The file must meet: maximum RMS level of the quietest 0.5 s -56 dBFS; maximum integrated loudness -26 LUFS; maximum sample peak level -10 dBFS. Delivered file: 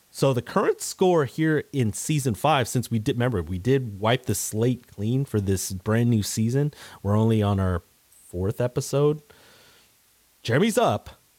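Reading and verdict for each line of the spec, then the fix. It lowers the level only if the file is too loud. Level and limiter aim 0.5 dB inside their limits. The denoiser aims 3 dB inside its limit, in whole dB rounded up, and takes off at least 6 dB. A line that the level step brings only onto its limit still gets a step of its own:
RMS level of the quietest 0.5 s -61 dBFS: pass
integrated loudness -24.5 LUFS: fail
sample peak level -8.0 dBFS: fail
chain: trim -2 dB; peak limiter -10.5 dBFS

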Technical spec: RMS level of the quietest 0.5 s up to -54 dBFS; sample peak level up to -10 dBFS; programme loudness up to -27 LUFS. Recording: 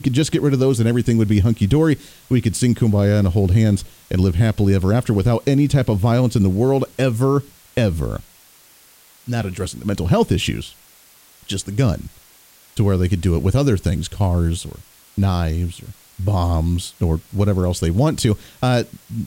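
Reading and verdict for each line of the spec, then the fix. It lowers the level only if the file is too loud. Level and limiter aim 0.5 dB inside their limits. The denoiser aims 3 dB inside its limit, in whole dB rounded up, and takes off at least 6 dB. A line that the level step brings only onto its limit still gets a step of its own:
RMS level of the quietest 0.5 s -50 dBFS: fail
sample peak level -4.5 dBFS: fail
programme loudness -19.0 LUFS: fail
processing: trim -8.5 dB

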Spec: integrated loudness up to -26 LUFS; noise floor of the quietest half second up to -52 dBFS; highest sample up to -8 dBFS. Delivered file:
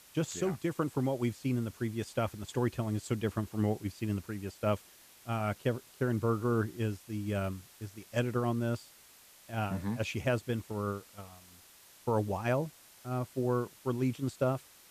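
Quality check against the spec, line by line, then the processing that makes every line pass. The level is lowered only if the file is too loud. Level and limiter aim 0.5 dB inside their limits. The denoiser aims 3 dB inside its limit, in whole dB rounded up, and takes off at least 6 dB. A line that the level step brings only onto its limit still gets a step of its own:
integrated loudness -34.0 LUFS: pass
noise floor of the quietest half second -58 dBFS: pass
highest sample -17.5 dBFS: pass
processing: none needed

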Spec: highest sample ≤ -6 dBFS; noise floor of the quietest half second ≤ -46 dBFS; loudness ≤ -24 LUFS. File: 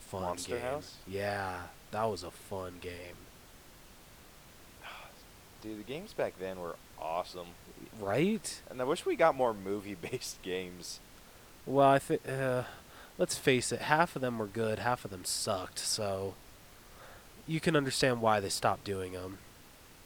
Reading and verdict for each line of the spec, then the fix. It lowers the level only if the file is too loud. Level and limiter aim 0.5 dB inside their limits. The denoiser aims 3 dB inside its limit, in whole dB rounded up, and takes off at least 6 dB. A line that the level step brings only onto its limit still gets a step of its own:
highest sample -9.0 dBFS: pass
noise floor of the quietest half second -56 dBFS: pass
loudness -33.5 LUFS: pass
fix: none needed

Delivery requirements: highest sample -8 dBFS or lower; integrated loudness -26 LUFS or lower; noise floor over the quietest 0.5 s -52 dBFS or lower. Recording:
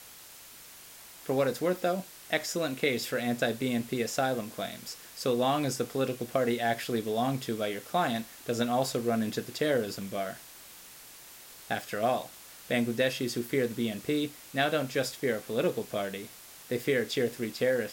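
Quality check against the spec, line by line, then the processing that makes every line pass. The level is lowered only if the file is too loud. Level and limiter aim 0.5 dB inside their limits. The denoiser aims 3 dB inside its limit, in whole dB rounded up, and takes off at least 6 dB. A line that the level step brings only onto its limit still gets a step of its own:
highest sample -13.0 dBFS: pass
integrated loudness -30.5 LUFS: pass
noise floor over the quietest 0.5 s -50 dBFS: fail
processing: noise reduction 6 dB, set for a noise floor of -50 dBFS

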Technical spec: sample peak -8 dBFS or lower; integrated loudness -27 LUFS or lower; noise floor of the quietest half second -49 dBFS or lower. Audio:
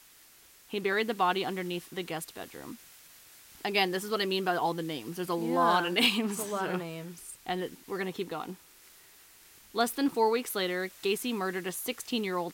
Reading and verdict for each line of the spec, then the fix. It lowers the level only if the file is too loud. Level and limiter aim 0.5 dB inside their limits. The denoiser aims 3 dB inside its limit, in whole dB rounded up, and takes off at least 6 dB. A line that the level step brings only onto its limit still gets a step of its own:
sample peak -14.0 dBFS: pass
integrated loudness -30.5 LUFS: pass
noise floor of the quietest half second -57 dBFS: pass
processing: none needed

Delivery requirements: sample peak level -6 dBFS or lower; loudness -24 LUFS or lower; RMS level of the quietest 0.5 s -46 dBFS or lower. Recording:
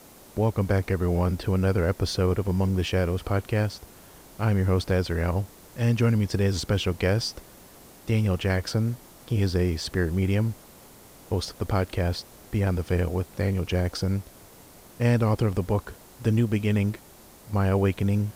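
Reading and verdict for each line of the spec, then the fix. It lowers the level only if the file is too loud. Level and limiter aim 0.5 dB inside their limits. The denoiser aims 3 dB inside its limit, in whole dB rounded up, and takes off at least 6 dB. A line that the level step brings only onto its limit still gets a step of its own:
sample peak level -10.0 dBFS: pass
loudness -26.0 LUFS: pass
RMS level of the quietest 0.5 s -50 dBFS: pass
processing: none needed

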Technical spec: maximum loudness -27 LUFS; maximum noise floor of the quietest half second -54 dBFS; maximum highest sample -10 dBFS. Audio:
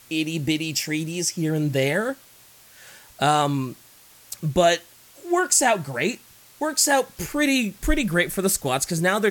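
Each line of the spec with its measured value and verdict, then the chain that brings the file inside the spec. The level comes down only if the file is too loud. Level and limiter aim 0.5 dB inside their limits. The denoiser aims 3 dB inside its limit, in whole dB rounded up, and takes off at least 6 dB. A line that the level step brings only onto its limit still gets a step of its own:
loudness -22.5 LUFS: fail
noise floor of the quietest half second -51 dBFS: fail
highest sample -6.0 dBFS: fail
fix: trim -5 dB

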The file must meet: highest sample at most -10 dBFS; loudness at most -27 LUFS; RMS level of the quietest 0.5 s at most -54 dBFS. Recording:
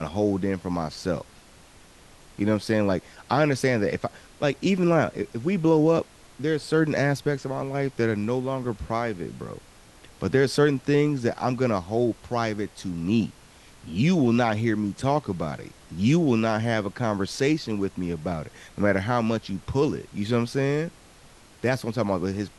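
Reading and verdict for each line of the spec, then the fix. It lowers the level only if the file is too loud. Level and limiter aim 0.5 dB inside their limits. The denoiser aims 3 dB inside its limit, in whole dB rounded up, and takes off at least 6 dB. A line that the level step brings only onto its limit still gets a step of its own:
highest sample -7.5 dBFS: fail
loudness -25.5 LUFS: fail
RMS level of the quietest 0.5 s -51 dBFS: fail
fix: noise reduction 6 dB, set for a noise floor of -51 dBFS; trim -2 dB; peak limiter -10.5 dBFS

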